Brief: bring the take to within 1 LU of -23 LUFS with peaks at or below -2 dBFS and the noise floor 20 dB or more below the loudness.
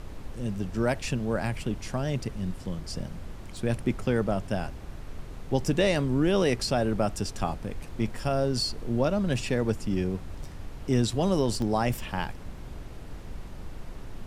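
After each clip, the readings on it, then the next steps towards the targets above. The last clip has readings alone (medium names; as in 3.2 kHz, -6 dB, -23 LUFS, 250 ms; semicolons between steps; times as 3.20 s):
dropouts 3; longest dropout 1.1 ms; noise floor -41 dBFS; noise floor target -49 dBFS; loudness -28.5 LUFS; peak level -11.0 dBFS; loudness target -23.0 LUFS
-> interpolate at 3.57/7.49/11.62 s, 1.1 ms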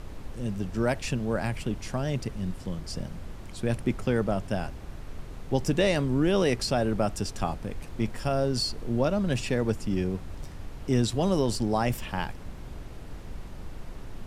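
dropouts 0; noise floor -41 dBFS; noise floor target -49 dBFS
-> noise print and reduce 8 dB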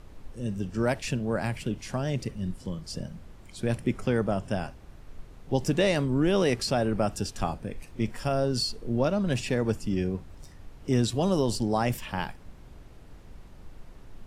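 noise floor -49 dBFS; loudness -28.5 LUFS; peak level -11.5 dBFS; loudness target -23.0 LUFS
-> trim +5.5 dB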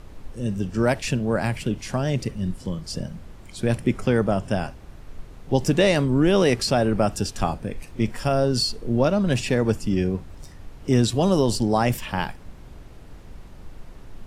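loudness -23.0 LUFS; peak level -6.0 dBFS; noise floor -43 dBFS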